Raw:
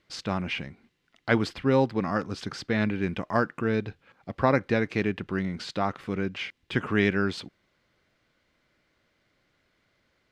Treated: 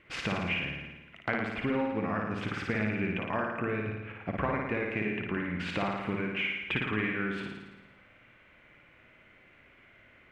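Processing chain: resonant high shelf 3.4 kHz -10.5 dB, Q 3; compression 6:1, threshold -38 dBFS, peak gain reduction 21 dB; flutter echo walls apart 9.6 m, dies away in 1.1 s; trim +7 dB

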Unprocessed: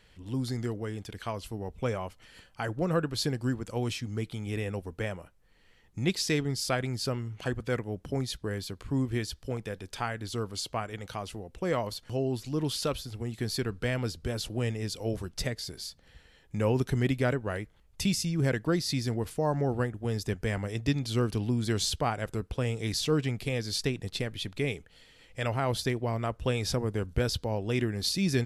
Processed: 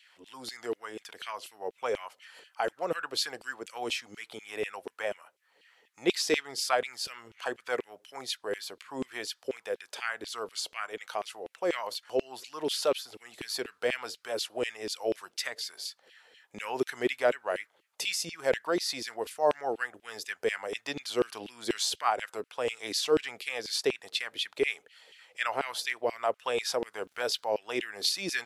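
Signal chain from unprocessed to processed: LFO high-pass saw down 4.1 Hz 360–3000 Hz; 27.03–27.54 s: crackle 140 per s -54 dBFS

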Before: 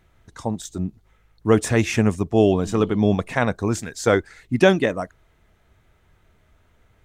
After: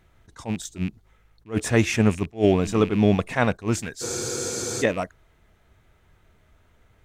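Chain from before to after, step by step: rattle on loud lows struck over -31 dBFS, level -26 dBFS; spectral freeze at 4.05 s, 0.77 s; attacks held to a fixed rise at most 280 dB/s

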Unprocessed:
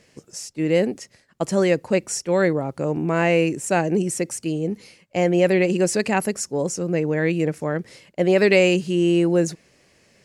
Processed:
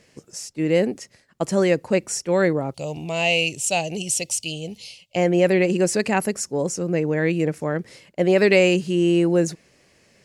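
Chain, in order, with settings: 2.74–5.16 s: FFT filter 120 Hz 0 dB, 170 Hz -7 dB, 350 Hz -13 dB, 690 Hz 0 dB, 1.6 kHz -18 dB, 2.9 kHz +13 dB, 9.3 kHz +5 dB

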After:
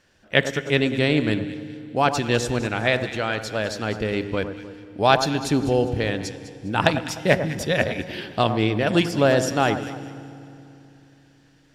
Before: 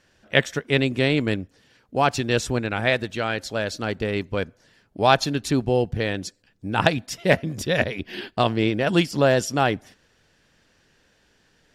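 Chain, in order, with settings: echo whose repeats swap between lows and highs 101 ms, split 1.5 kHz, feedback 58%, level -9 dB; FDN reverb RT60 3 s, low-frequency decay 1.3×, high-frequency decay 0.85×, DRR 15 dB

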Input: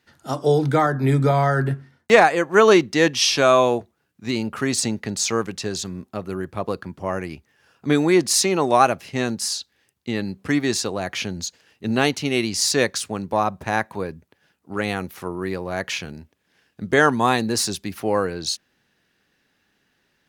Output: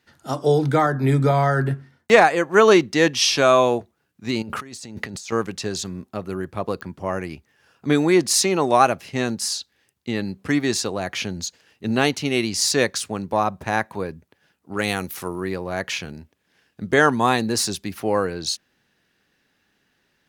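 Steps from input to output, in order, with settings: 4.42–5.32 s: compressor with a negative ratio -35 dBFS, ratio -1; 14.79–15.41 s: treble shelf 3.7 kHz +10.5 dB; clicks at 6.81 s, -19 dBFS

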